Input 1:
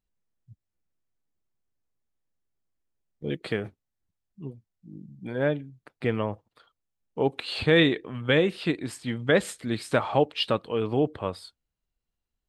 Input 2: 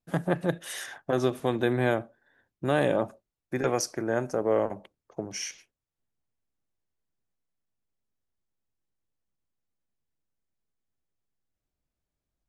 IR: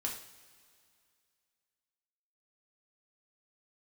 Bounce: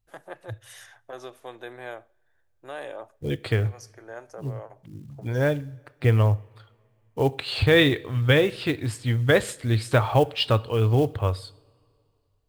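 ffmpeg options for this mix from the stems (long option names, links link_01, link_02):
-filter_complex "[0:a]acrusher=bits=7:mode=log:mix=0:aa=0.000001,volume=1.5dB,asplit=3[link_01][link_02][link_03];[link_02]volume=-14.5dB[link_04];[1:a]highpass=470,volume=-9.5dB,asplit=2[link_05][link_06];[link_06]volume=-24dB[link_07];[link_03]apad=whole_len=550511[link_08];[link_05][link_08]sidechaincompress=threshold=-34dB:ratio=8:attack=5.3:release=419[link_09];[2:a]atrim=start_sample=2205[link_10];[link_04][link_07]amix=inputs=2:normalize=0[link_11];[link_11][link_10]afir=irnorm=-1:irlink=0[link_12];[link_01][link_09][link_12]amix=inputs=3:normalize=0,lowshelf=frequency=140:width_type=q:width=3:gain=7.5"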